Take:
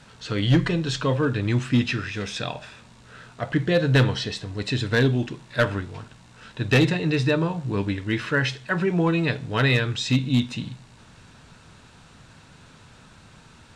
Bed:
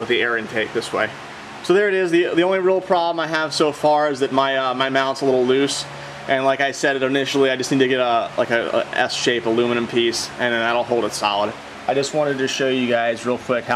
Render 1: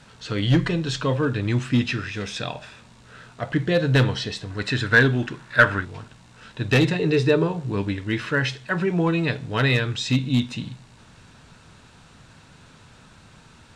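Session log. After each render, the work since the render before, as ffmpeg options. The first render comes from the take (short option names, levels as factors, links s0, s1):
-filter_complex "[0:a]asettb=1/sr,asplit=3[s0][s1][s2];[s0]atrim=end=4.504[s3];[s1]atrim=start=4.5:end=5.85,asetpts=PTS-STARTPTS,afade=t=in:d=0.004:c=qsin,afade=t=out:st=1.346:d=0.004:c=qsin,equalizer=f=1500:w=1.7:g=11[s4];[s2]atrim=start=5.846[s5];[s3][s4]acrossfade=d=0.004:c1=hsin:c2=qsin[s6];[s6][s5]acrossfade=d=0.004:c1=qsin:c2=hsin,asettb=1/sr,asplit=3[s7][s8][s9];[s7]atrim=end=6.994[s10];[s8]atrim=start=6.99:end=7.66,asetpts=PTS-STARTPTS,afade=t=in:d=0.004:c=qsin,afade=t=out:st=0.666:d=0.004:c=qsin,equalizer=f=410:t=o:w=0.28:g=13.5[s11];[s9]atrim=start=7.656[s12];[s10][s11]acrossfade=d=0.004:c1=hsin:c2=qsin[s13];[s13][s12]acrossfade=d=0.004:c1=qsin:c2=hsin"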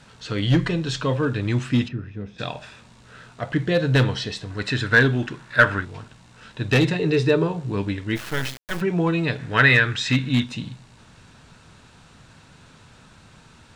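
-filter_complex "[0:a]asplit=3[s0][s1][s2];[s0]afade=t=out:st=1.87:d=0.02[s3];[s1]bandpass=f=140:t=q:w=0.57,afade=t=in:st=1.87:d=0.02,afade=t=out:st=2.38:d=0.02[s4];[s2]afade=t=in:st=2.38:d=0.02[s5];[s3][s4][s5]amix=inputs=3:normalize=0,asplit=3[s6][s7][s8];[s6]afade=t=out:st=8.15:d=0.02[s9];[s7]acrusher=bits=3:dc=4:mix=0:aa=0.000001,afade=t=in:st=8.15:d=0.02,afade=t=out:st=8.8:d=0.02[s10];[s8]afade=t=in:st=8.8:d=0.02[s11];[s9][s10][s11]amix=inputs=3:normalize=0,asettb=1/sr,asplit=3[s12][s13][s14];[s12]atrim=end=9.394[s15];[s13]atrim=start=9.39:end=10.44,asetpts=PTS-STARTPTS,afade=t=in:d=0.004:c=qsin,afade=t=out:st=1.046:d=0.004:c=qsin,equalizer=f=1700:w=1.5:g=12[s16];[s14]atrim=start=10.436[s17];[s15][s16]acrossfade=d=0.004:c1=hsin:c2=qsin[s18];[s18][s17]acrossfade=d=0.004:c1=qsin:c2=hsin"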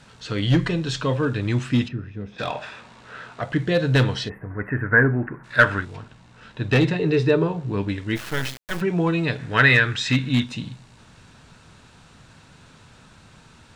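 -filter_complex "[0:a]asettb=1/sr,asplit=3[s0][s1][s2];[s0]atrim=end=2.324[s3];[s1]atrim=start=2.32:end=3.42,asetpts=PTS-STARTPTS,afade=t=in:d=0.004:c=qsin,afade=t=out:st=1.096:d=0.004:c=qsin,asplit=2[s4][s5];[s5]highpass=f=720:p=1,volume=6.31,asoftclip=type=tanh:threshold=0.211[s6];[s4][s6]amix=inputs=2:normalize=0,lowpass=f=1600:p=1,volume=0.501[s7];[s2]atrim=start=3.416[s8];[s3][s7]acrossfade=d=0.004:c1=hsin:c2=qsin[s9];[s9][s8]acrossfade=d=0.004:c1=qsin:c2=hsin,asplit=3[s10][s11][s12];[s10]afade=t=out:st=4.28:d=0.02[s13];[s11]asuperstop=centerf=5200:order=12:qfactor=0.56,afade=t=in:st=4.28:d=0.02,afade=t=out:st=5.43:d=0.02[s14];[s12]afade=t=in:st=5.43:d=0.02[s15];[s13][s14][s15]amix=inputs=3:normalize=0,asettb=1/sr,asplit=3[s16][s17][s18];[s16]atrim=end=5.964[s19];[s17]atrim=start=5.96:end=7.89,asetpts=PTS-STARTPTS,afade=t=in:d=0.004:c=qsin,afade=t=out:st=1.926:d=0.004:c=qsin,aemphasis=mode=reproduction:type=cd[s20];[s18]atrim=start=7.886[s21];[s19][s20]acrossfade=d=0.004:c1=hsin:c2=qsin[s22];[s22][s21]acrossfade=d=0.004:c1=qsin:c2=hsin"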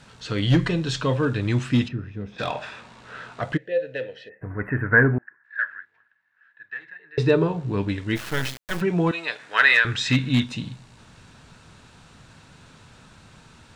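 -filter_complex "[0:a]asplit=3[s0][s1][s2];[s0]afade=t=out:st=3.56:d=0.02[s3];[s1]asplit=3[s4][s5][s6];[s4]bandpass=f=530:t=q:w=8,volume=1[s7];[s5]bandpass=f=1840:t=q:w=8,volume=0.501[s8];[s6]bandpass=f=2480:t=q:w=8,volume=0.355[s9];[s7][s8][s9]amix=inputs=3:normalize=0,afade=t=in:st=3.56:d=0.02,afade=t=out:st=4.41:d=0.02[s10];[s2]afade=t=in:st=4.41:d=0.02[s11];[s3][s10][s11]amix=inputs=3:normalize=0,asettb=1/sr,asplit=3[s12][s13][s14];[s12]atrim=end=5.184[s15];[s13]atrim=start=5.18:end=7.18,asetpts=PTS-STARTPTS,afade=t=in:d=0.004:c=qsin,afade=t=out:st=1.996:d=0.004:c=qsin,bandpass=f=1700:t=q:w=17[s16];[s14]atrim=start=7.176[s17];[s15][s16]acrossfade=d=0.004:c1=hsin:c2=qsin[s18];[s18][s17]acrossfade=d=0.004:c1=qsin:c2=hsin,asettb=1/sr,asplit=3[s19][s20][s21];[s19]atrim=end=9.114[s22];[s20]atrim=start=9.11:end=9.85,asetpts=PTS-STARTPTS,afade=t=in:d=0.004:c=qsin,afade=t=out:st=0.736:d=0.004:c=qsin,highpass=760[s23];[s21]atrim=start=9.846[s24];[s22][s23]acrossfade=d=0.004:c1=hsin:c2=qsin[s25];[s25][s24]acrossfade=d=0.004:c1=qsin:c2=hsin"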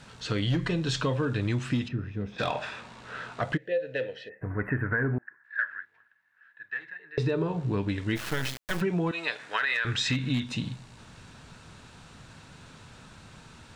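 -af "alimiter=limit=0.224:level=0:latency=1:release=70,acompressor=threshold=0.0631:ratio=6"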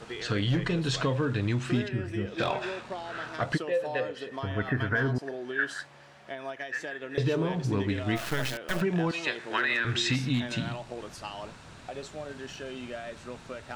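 -filter_complex "[1:a]volume=0.0944[s0];[0:a][s0]amix=inputs=2:normalize=0"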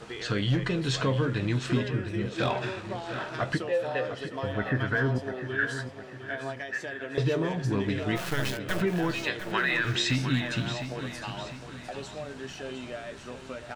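-filter_complex "[0:a]asplit=2[s0][s1];[s1]adelay=15,volume=0.251[s2];[s0][s2]amix=inputs=2:normalize=0,aecho=1:1:705|1410|2115|2820|3525:0.299|0.134|0.0605|0.0272|0.0122"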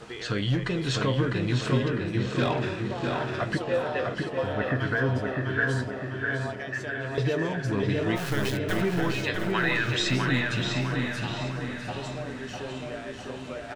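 -filter_complex "[0:a]asplit=2[s0][s1];[s1]adelay=652,lowpass=f=3700:p=1,volume=0.708,asplit=2[s2][s3];[s3]adelay=652,lowpass=f=3700:p=1,volume=0.52,asplit=2[s4][s5];[s5]adelay=652,lowpass=f=3700:p=1,volume=0.52,asplit=2[s6][s7];[s7]adelay=652,lowpass=f=3700:p=1,volume=0.52,asplit=2[s8][s9];[s9]adelay=652,lowpass=f=3700:p=1,volume=0.52,asplit=2[s10][s11];[s11]adelay=652,lowpass=f=3700:p=1,volume=0.52,asplit=2[s12][s13];[s13]adelay=652,lowpass=f=3700:p=1,volume=0.52[s14];[s0][s2][s4][s6][s8][s10][s12][s14]amix=inputs=8:normalize=0"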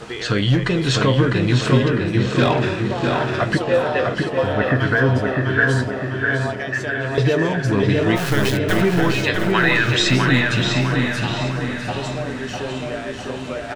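-af "volume=2.82"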